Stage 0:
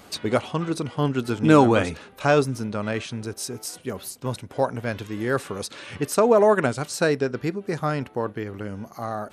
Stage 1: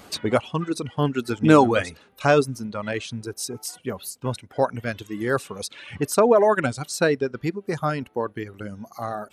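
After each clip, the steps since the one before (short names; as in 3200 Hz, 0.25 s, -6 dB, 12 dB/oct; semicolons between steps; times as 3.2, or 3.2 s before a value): reverb removal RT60 1.6 s; gain +1.5 dB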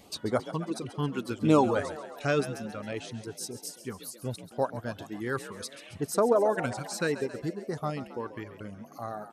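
LFO notch sine 0.69 Hz 600–2700 Hz; frequency-shifting echo 0.136 s, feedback 62%, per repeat +52 Hz, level -13.5 dB; gain -7 dB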